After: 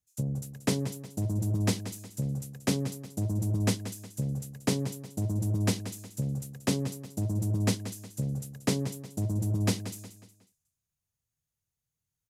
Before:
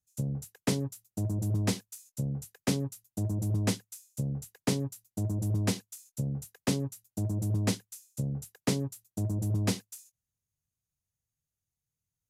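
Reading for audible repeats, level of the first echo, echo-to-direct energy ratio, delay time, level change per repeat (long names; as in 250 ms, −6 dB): 3, −12.0 dB, −11.5 dB, 182 ms, −8.5 dB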